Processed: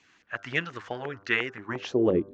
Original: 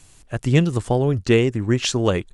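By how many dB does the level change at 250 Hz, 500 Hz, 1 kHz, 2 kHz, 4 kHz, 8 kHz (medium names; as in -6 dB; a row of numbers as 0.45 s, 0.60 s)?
-9.5 dB, -8.0 dB, -8.0 dB, 0.0 dB, -10.0 dB, under -20 dB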